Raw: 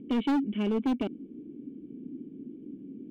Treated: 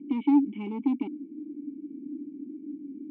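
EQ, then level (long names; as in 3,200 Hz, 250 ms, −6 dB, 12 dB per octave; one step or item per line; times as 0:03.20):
formant filter u
notch filter 710 Hz, Q 12
+8.5 dB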